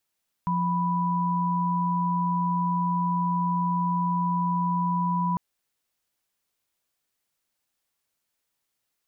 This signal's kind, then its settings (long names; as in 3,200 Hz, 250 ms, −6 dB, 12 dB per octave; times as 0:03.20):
held notes F3/B5 sine, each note −25 dBFS 4.90 s